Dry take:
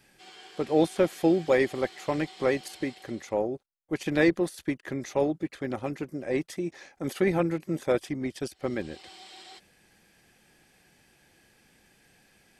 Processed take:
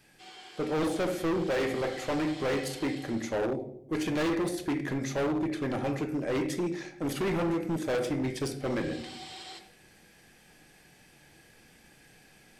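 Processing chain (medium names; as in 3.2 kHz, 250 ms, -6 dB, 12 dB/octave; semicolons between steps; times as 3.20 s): in parallel at +2 dB: gain riding within 3 dB 0.5 s; on the sum: simulated room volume 170 m³, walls mixed, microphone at 0.48 m; overload inside the chain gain 20 dB; trim -6 dB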